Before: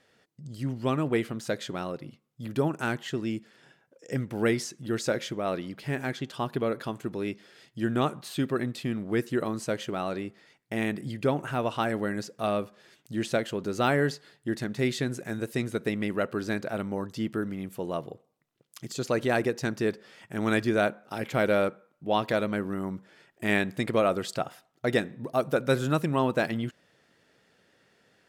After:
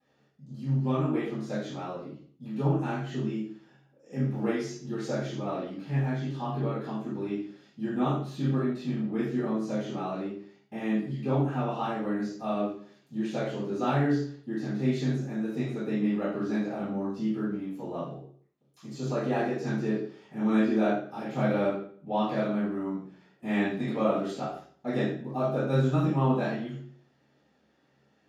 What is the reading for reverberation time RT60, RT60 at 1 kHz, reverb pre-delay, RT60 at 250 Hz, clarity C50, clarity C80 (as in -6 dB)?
0.50 s, 0.45 s, 3 ms, 0.55 s, 1.5 dB, 5.5 dB